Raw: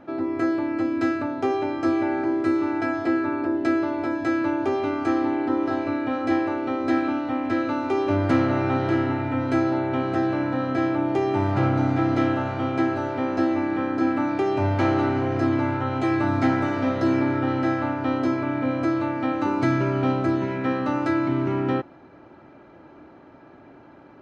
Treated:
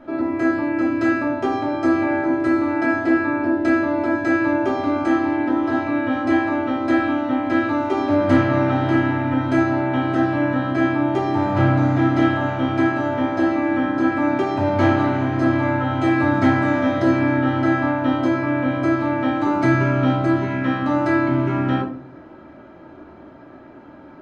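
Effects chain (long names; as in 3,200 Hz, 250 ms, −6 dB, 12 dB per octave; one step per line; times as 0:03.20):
rectangular room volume 380 cubic metres, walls furnished, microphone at 2.8 metres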